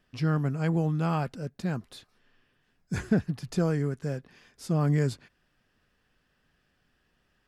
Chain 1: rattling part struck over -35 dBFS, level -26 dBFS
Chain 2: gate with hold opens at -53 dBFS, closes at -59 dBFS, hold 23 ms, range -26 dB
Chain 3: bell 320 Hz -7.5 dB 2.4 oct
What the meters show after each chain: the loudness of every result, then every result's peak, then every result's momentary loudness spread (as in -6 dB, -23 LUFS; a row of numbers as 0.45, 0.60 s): -28.5, -29.0, -33.5 LUFS; -13.0, -13.0, -18.0 dBFS; 10, 10, 12 LU